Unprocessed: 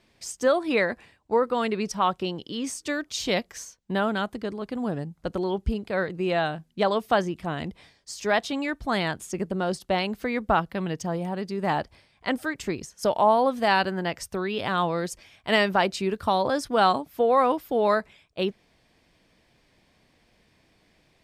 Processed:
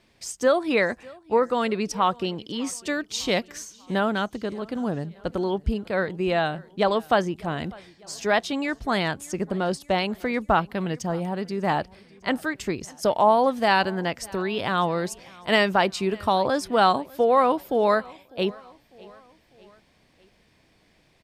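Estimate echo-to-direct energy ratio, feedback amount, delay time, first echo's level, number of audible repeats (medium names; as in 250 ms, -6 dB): -22.5 dB, 54%, 600 ms, -24.0 dB, 3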